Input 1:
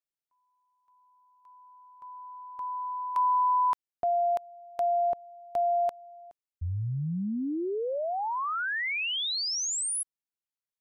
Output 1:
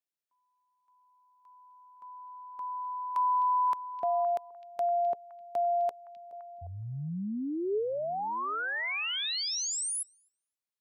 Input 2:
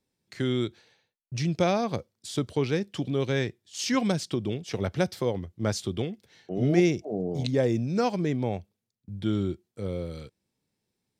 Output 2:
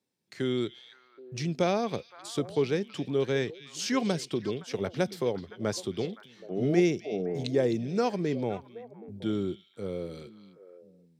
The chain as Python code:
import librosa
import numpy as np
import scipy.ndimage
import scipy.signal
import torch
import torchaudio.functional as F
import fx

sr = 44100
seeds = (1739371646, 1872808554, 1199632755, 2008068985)

p1 = scipy.signal.sosfilt(scipy.signal.butter(2, 140.0, 'highpass', fs=sr, output='sos'), x)
p2 = fx.dynamic_eq(p1, sr, hz=420.0, q=5.2, threshold_db=-44.0, ratio=4.0, max_db=5)
p3 = p2 + fx.echo_stepped(p2, sr, ms=258, hz=3400.0, octaves=-1.4, feedback_pct=70, wet_db=-9.5, dry=0)
y = p3 * 10.0 ** (-2.5 / 20.0)